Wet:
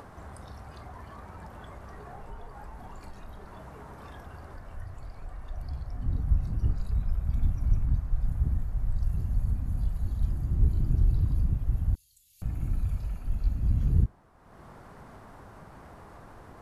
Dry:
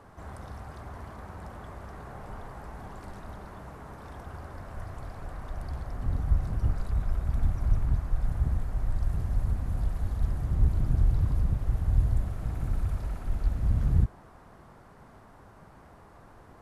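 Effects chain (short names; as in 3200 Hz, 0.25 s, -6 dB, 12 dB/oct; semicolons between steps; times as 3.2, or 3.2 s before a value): spectral noise reduction 8 dB; 11.95–12.42 inverse Chebyshev high-pass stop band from 1400 Hz, stop band 50 dB; upward compressor, threshold -36 dBFS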